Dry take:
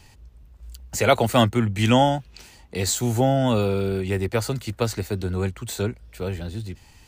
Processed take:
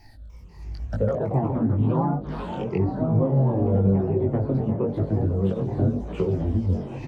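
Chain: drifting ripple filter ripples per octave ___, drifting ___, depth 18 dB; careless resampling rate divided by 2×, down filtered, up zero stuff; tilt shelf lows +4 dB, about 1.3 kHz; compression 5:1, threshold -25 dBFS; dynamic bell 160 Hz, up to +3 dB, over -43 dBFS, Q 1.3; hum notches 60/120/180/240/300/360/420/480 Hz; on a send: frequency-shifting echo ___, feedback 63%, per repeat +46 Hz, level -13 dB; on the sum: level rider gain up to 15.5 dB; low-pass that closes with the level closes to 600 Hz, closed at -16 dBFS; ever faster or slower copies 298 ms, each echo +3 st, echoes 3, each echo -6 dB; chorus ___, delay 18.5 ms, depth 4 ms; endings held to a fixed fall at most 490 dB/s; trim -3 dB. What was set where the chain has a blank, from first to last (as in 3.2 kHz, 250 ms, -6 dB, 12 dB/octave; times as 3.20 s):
0.75, -1.4 Hz, 489 ms, 0.96 Hz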